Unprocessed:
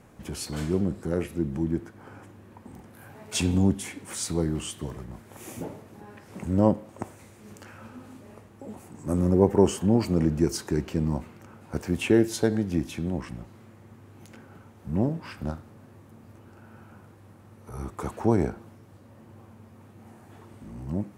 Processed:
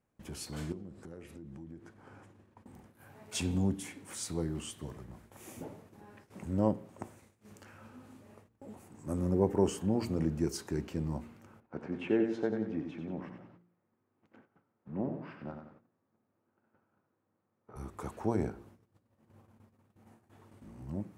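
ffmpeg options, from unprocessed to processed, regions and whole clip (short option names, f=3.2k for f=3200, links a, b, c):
-filter_complex "[0:a]asettb=1/sr,asplit=3[a][b][c];[a]atrim=end=0.724[d];[b]atrim=start=0.72:end=2.64,asetpts=PTS-STARTPTS,afade=t=in:d=0.004:c=qsin,afade=t=out:st=1.916:d=0.004:c=qsin,lowpass=9.9k,acompressor=threshold=-36dB:ratio=5:attack=3.2:release=140:knee=1:detection=peak[e];[c]atrim=start=2.636[f];[d][e]acrossfade=d=0.004:c1=hsin:c2=qsin[g];[g][f]acrossfade=d=0.004:c1=qsin:c2=hsin,asettb=1/sr,asplit=3[h][i][j];[h]atrim=end=11.604[k];[i]atrim=start=11.6:end=17.76,asetpts=PTS-STARTPTS,afade=t=in:d=0.004:c=qsin,afade=t=out:st=6.156:d=0.004:c=qsin,highpass=180,lowpass=2.1k,aecho=1:1:92|184|276|368|460:0.447|0.188|0.0788|0.0331|0.0139,atrim=end_sample=271656[l];[j]atrim=start=17.756[m];[k][l]acrossfade=d=0.004:c1=hsin:c2=qsin[n];[n][m]acrossfade=d=0.004:c1=qsin:c2=hsin,agate=range=-18dB:threshold=-48dB:ratio=16:detection=peak,bandreject=f=58.16:t=h:w=4,bandreject=f=116.32:t=h:w=4,bandreject=f=174.48:t=h:w=4,bandreject=f=232.64:t=h:w=4,bandreject=f=290.8:t=h:w=4,bandreject=f=348.96:t=h:w=4,bandreject=f=407.12:t=h:w=4,bandreject=f=465.28:t=h:w=4,volume=-8dB"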